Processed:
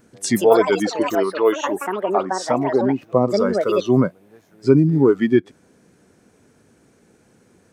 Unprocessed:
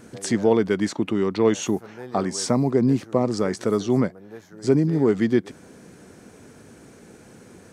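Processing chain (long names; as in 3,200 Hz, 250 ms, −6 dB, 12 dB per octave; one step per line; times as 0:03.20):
noise reduction from a noise print of the clip's start 14 dB
delay with pitch and tempo change per echo 206 ms, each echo +7 semitones, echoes 2, each echo −6 dB
0:01.15–0:03.02: bass and treble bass −13 dB, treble −12 dB
level +5.5 dB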